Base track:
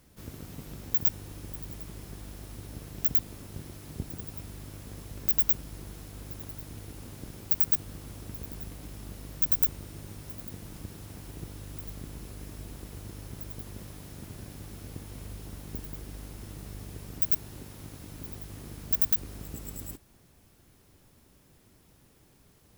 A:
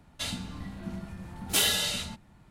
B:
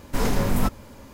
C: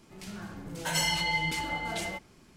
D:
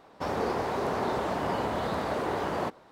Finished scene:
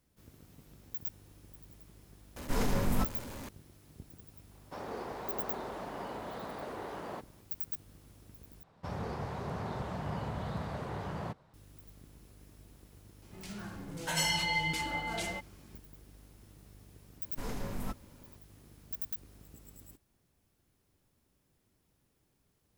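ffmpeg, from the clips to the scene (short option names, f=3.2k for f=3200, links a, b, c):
-filter_complex "[2:a]asplit=2[a][b];[4:a]asplit=2[c][d];[0:a]volume=-14dB[e];[a]aeval=exprs='val(0)+0.5*0.0237*sgn(val(0))':c=same[f];[c]highpass=110[g];[d]lowshelf=f=210:t=q:w=1.5:g=10.5[h];[e]asplit=2[i][j];[i]atrim=end=8.634[k];[h]atrim=end=2.91,asetpts=PTS-STARTPTS,volume=-10.5dB[l];[j]atrim=start=11.536[m];[f]atrim=end=1.13,asetpts=PTS-STARTPTS,volume=-8.5dB,afade=t=in:d=0.004:c=hsin,afade=t=out:st=1.126:d=0.004:c=hsin,adelay=2360[n];[g]atrim=end=2.91,asetpts=PTS-STARTPTS,volume=-11.5dB,afade=t=in:d=0.004:c=hsin,afade=t=out:st=2.906:d=0.004:c=hsin,adelay=4510[o];[3:a]atrim=end=2.56,asetpts=PTS-STARTPTS,volume=-2.5dB,afade=t=in:d=0.004:c=hsin,afade=t=out:st=2.556:d=0.004:c=hsin,adelay=13220[p];[b]atrim=end=1.13,asetpts=PTS-STARTPTS,volume=-16dB,afade=t=in:d=0.004:c=hsin,afade=t=out:st=1.126:d=0.004:c=hsin,adelay=17240[q];[k][l]acrossfade=d=0.004:c1=hsin:c2=hsin[r];[r][m]acrossfade=d=0.004:c1=hsin:c2=hsin[s];[s][n][o][p][q]amix=inputs=5:normalize=0"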